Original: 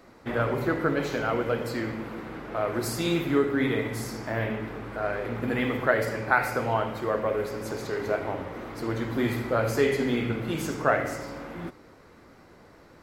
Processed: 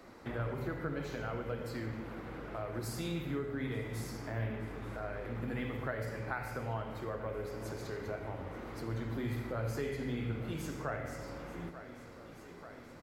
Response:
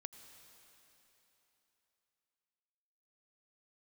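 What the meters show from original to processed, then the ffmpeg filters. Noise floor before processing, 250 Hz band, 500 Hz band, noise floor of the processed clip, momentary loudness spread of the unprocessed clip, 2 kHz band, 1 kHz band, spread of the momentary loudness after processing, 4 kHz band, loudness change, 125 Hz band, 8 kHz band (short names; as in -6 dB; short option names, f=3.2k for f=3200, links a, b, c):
-53 dBFS, -11.0 dB, -13.0 dB, -52 dBFS, 10 LU, -13.5 dB, -13.5 dB, 7 LU, -12.0 dB, -11.5 dB, -5.5 dB, -11.0 dB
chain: -filter_complex "[0:a]aecho=1:1:885|1770|2655|3540:0.0841|0.048|0.0273|0.0156,acrossover=split=130[a][b];[b]acompressor=threshold=-46dB:ratio=2[c];[a][c]amix=inputs=2:normalize=0[d];[1:a]atrim=start_sample=2205,afade=t=out:st=0.32:d=0.01,atrim=end_sample=14553,asetrate=74970,aresample=44100[e];[d][e]afir=irnorm=-1:irlink=0,volume=8.5dB"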